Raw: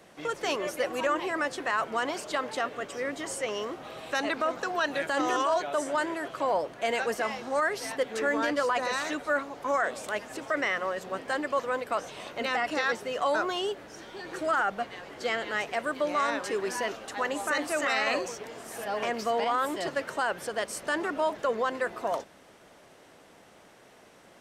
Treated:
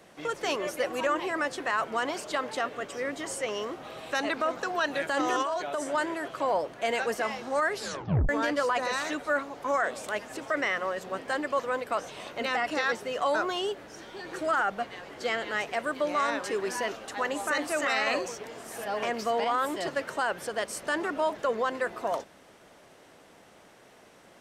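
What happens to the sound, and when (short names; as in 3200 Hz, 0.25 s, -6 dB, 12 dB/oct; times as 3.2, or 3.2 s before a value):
5.42–5.9 compressor, threshold -26 dBFS
7.76 tape stop 0.53 s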